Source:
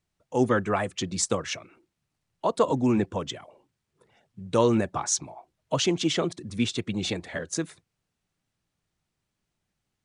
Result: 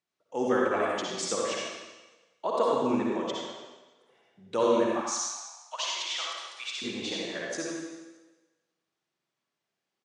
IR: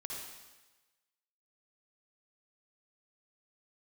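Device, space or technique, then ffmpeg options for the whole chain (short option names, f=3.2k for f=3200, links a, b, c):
supermarket ceiling speaker: -filter_complex "[0:a]highpass=300,lowpass=6.5k[a];[1:a]atrim=start_sample=2205[b];[a][b]afir=irnorm=-1:irlink=0,asettb=1/sr,asplit=3[c][d][e];[c]atrim=end=5.014[f];[d]atrim=start=5.01:end=6.82,asetpts=PTS-STARTPTS,afade=t=in:d=0.004:c=qsin,afade=t=out:st=1.806:d=0.004:c=qsin,highpass=f=890:w=0.5412,highpass=f=890:w=1.3066[g];[e]atrim=start=6.816[h];[f][g]acrossfade=d=0.004:c1=hsin:c2=qsin[i];[i][h]acrossfade=d=0.004:c1=qsin:c2=hsin,asplit=2[j][k];[k]adelay=91,lowpass=f=2k:p=1,volume=-8dB,asplit=2[l][m];[m]adelay=91,lowpass=f=2k:p=1,volume=0.42,asplit=2[n][o];[o]adelay=91,lowpass=f=2k:p=1,volume=0.42,asplit=2[p][q];[q]adelay=91,lowpass=f=2k:p=1,volume=0.42,asplit=2[r][s];[s]adelay=91,lowpass=f=2k:p=1,volume=0.42[t];[j][l][n][p][r][t]amix=inputs=6:normalize=0"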